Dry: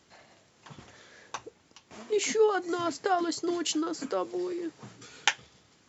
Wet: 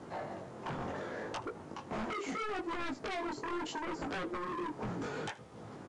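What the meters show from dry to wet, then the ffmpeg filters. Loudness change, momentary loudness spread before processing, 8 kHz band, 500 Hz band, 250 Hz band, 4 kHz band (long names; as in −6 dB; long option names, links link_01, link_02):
−10.0 dB, 17 LU, can't be measured, −10.5 dB, −6.0 dB, −12.0 dB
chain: -filter_complex "[0:a]highpass=frequency=120:poles=1,highshelf=frequency=4600:gain=-8.5,acompressor=threshold=-43dB:ratio=8,acrossover=split=1300[link_01][link_02];[link_01]aeval=exprs='0.0211*sin(PI/2*5.01*val(0)/0.0211)':channel_layout=same[link_03];[link_03][link_02]amix=inputs=2:normalize=0,acrusher=bits=10:mix=0:aa=0.000001,flanger=delay=18:depth=5.4:speed=0.73,asoftclip=type=hard:threshold=-38dB,aecho=1:1:79:0.0944,aresample=22050,aresample=44100,volume=4dB"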